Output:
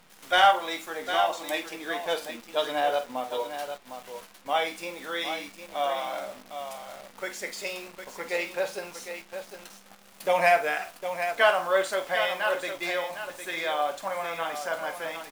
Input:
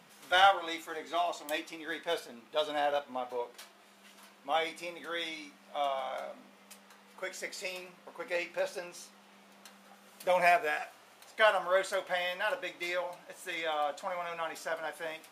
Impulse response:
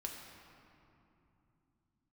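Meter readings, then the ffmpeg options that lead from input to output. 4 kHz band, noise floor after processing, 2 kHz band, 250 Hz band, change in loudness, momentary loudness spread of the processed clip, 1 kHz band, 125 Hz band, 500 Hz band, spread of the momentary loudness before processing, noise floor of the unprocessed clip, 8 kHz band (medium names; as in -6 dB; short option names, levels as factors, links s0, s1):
+5.0 dB, -53 dBFS, +5.0 dB, +5.0 dB, +4.5 dB, 17 LU, +5.5 dB, +5.5 dB, +5.0 dB, 18 LU, -59 dBFS, +6.5 dB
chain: -af "aecho=1:1:47|757:0.251|0.355,acontrast=81,acrusher=bits=8:dc=4:mix=0:aa=0.000001,volume=0.75"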